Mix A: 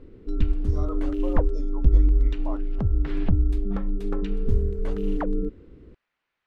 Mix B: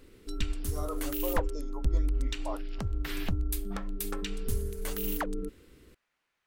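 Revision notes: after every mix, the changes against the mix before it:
background: add tilt shelf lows -10 dB, about 1.2 kHz; master: remove low-pass 4.3 kHz 12 dB/octave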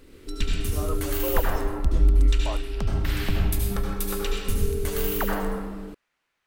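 speech +3.5 dB; reverb: on, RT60 1.6 s

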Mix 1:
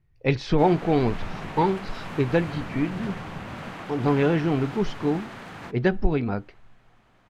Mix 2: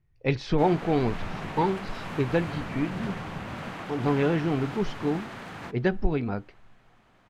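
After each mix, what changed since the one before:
speech -3.0 dB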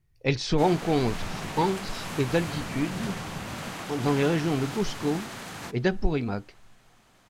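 master: add tone controls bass 0 dB, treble +15 dB

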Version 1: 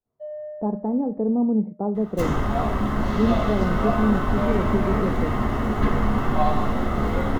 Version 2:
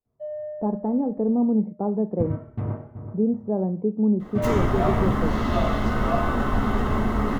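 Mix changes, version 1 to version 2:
first sound: add bass shelf 230 Hz +10.5 dB; second sound: entry +2.25 s

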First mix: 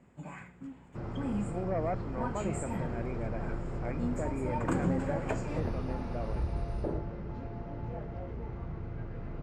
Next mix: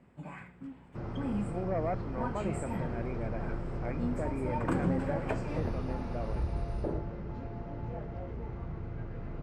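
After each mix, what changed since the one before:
first sound: add peaking EQ 7 kHz -14 dB 0.22 oct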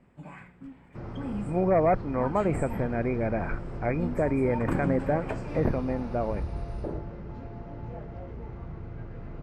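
speech +11.0 dB

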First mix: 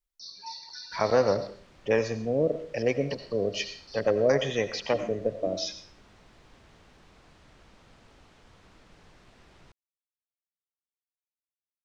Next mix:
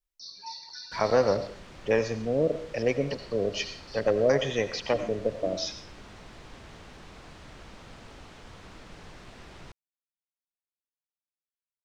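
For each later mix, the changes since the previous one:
background +9.0 dB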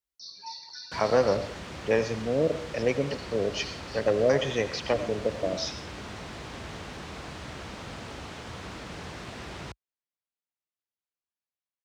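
background +8.5 dB; master: add high-pass 53 Hz 24 dB/octave

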